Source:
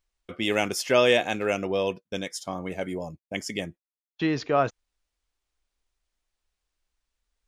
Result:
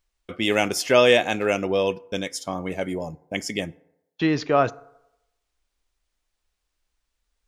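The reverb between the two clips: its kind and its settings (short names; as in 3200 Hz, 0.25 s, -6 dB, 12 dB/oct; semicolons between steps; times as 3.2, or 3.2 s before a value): FDN reverb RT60 0.88 s, low-frequency decay 0.75×, high-frequency decay 0.45×, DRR 19 dB; gain +3.5 dB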